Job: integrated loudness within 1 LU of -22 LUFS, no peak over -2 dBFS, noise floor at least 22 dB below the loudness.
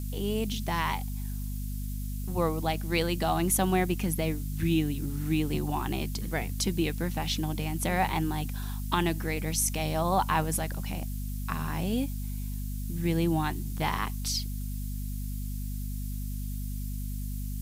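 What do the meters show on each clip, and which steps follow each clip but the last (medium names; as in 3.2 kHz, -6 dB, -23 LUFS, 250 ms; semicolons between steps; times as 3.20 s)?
hum 50 Hz; highest harmonic 250 Hz; hum level -31 dBFS; noise floor -34 dBFS; noise floor target -53 dBFS; loudness -30.5 LUFS; peak level -11.5 dBFS; loudness target -22.0 LUFS
-> hum notches 50/100/150/200/250 Hz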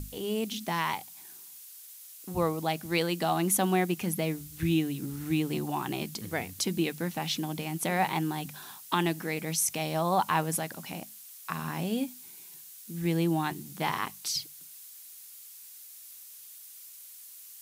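hum not found; noise floor -49 dBFS; noise floor target -53 dBFS
-> noise reduction 6 dB, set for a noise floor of -49 dBFS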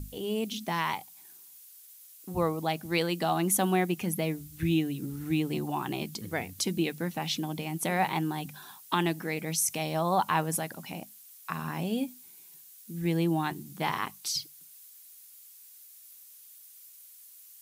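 noise floor -53 dBFS; loudness -30.5 LUFS; peak level -13.0 dBFS; loudness target -22.0 LUFS
-> trim +8.5 dB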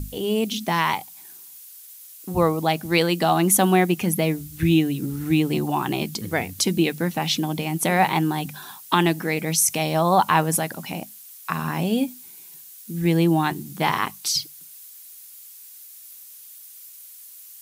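loudness -22.0 LUFS; peak level -4.5 dBFS; noise floor -44 dBFS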